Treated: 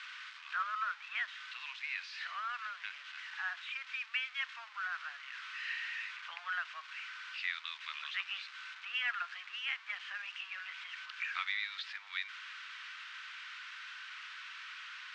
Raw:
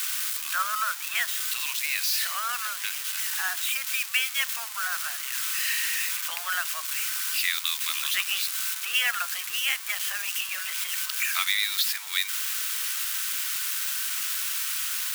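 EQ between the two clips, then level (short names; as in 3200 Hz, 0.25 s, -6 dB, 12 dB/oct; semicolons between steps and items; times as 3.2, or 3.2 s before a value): HPF 1400 Hz 12 dB/oct; air absorption 110 m; tape spacing loss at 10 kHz 39 dB; +1.5 dB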